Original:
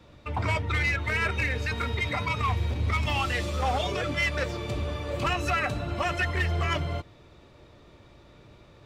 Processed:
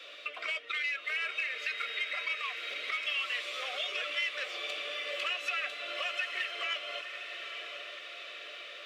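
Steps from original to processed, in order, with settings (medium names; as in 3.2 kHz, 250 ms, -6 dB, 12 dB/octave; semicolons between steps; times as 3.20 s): high-pass 510 Hz 24 dB/octave; peaking EQ 2.9 kHz +14 dB 1.1 oct; compression 2.5:1, threshold -47 dBFS, peak gain reduction 21 dB; Butterworth band-stop 880 Hz, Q 2.2; echo that smears into a reverb 904 ms, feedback 59%, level -8 dB; trim +5 dB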